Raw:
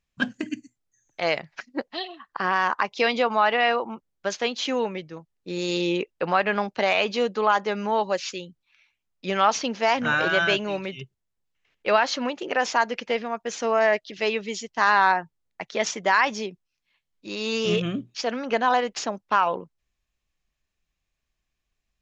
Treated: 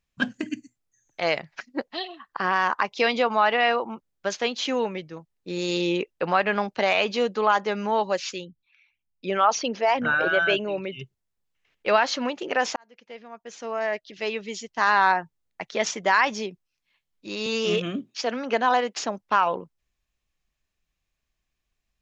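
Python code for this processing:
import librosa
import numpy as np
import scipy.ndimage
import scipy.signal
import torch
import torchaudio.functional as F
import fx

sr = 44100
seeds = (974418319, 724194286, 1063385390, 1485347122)

y = fx.envelope_sharpen(x, sr, power=1.5, at=(8.43, 10.99), fade=0.02)
y = fx.highpass(y, sr, hz=190.0, slope=24, at=(17.46, 19.03))
y = fx.edit(y, sr, fx.fade_in_span(start_s=12.76, length_s=2.4), tone=tone)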